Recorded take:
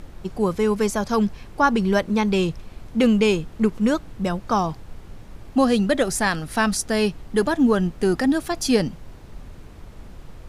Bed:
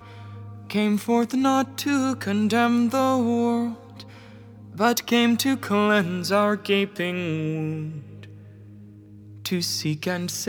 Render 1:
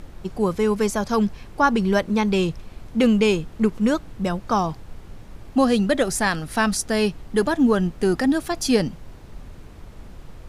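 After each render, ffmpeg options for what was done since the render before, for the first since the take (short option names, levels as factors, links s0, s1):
-af anull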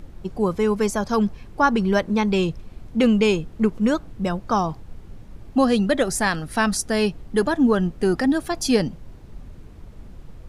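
-af "afftdn=nr=6:nf=-43"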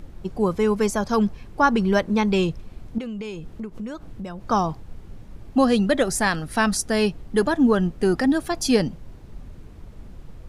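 -filter_complex "[0:a]asettb=1/sr,asplit=3[s0][s1][s2];[s0]atrim=end=2.984[s3];[s1]atrim=start=2.98:end=4.41,asetpts=PTS-STARTPTS,afade=t=in:d=0.004:c=qsin,afade=t=out:st=1.426:d=0.004:c=qsin,acompressor=threshold=0.0355:ratio=8:attack=3.2:release=140:knee=1:detection=peak[s4];[s2]atrim=start=4.406[s5];[s3][s4]acrossfade=d=0.004:c1=hsin:c2=qsin[s6];[s6][s5]acrossfade=d=0.004:c1=qsin:c2=hsin"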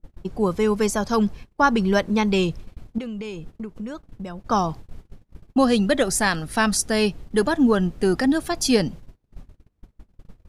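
-af "agate=range=0.0316:threshold=0.0178:ratio=16:detection=peak,adynamicequalizer=threshold=0.02:dfrequency=2400:dqfactor=0.7:tfrequency=2400:tqfactor=0.7:attack=5:release=100:ratio=0.375:range=1.5:mode=boostabove:tftype=highshelf"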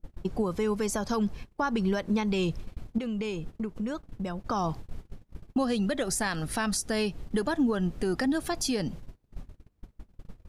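-af "acompressor=threshold=0.0708:ratio=3,alimiter=limit=0.119:level=0:latency=1:release=142"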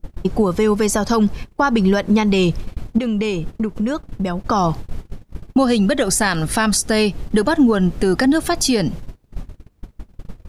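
-af "volume=3.98"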